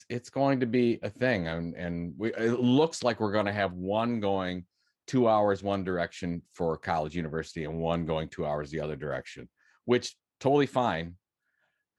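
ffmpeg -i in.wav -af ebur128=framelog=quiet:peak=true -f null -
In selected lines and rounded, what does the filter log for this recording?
Integrated loudness:
  I:         -29.3 LUFS
  Threshold: -39.7 LUFS
Loudness range:
  LRA:         4.8 LU
  Threshold: -49.9 LUFS
  LRA low:   -32.8 LUFS
  LRA high:  -28.0 LUFS
True peak:
  Peak:      -11.3 dBFS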